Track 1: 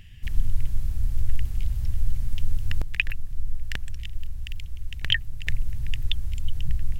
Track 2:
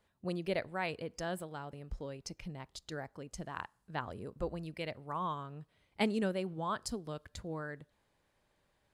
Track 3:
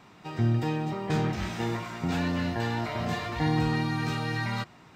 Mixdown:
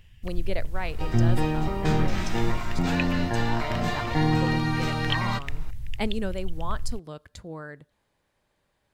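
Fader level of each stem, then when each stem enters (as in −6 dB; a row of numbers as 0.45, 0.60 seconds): −6.5, +2.5, +3.0 decibels; 0.00, 0.00, 0.75 seconds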